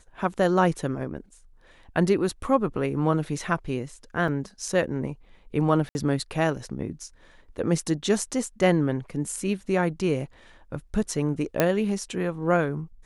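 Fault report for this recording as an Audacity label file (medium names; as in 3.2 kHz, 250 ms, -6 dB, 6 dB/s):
4.280000	4.280000	dropout 2.3 ms
5.890000	5.950000	dropout 61 ms
11.600000	11.600000	pop -6 dBFS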